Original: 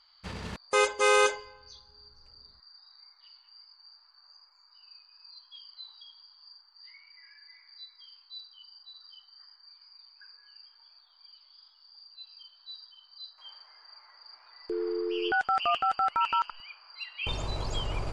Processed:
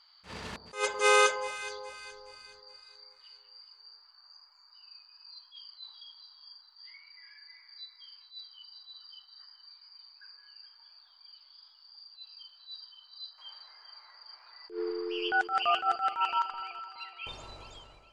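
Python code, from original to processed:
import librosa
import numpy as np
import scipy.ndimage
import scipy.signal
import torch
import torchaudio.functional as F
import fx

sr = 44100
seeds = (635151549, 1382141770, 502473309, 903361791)

p1 = fx.fade_out_tail(x, sr, length_s=2.23)
p2 = fx.low_shelf(p1, sr, hz=230.0, db=-10.0)
p3 = p2 + fx.echo_alternate(p2, sr, ms=210, hz=1100.0, feedback_pct=63, wet_db=-11.0, dry=0)
p4 = fx.attack_slew(p3, sr, db_per_s=190.0)
y = p4 * librosa.db_to_amplitude(1.0)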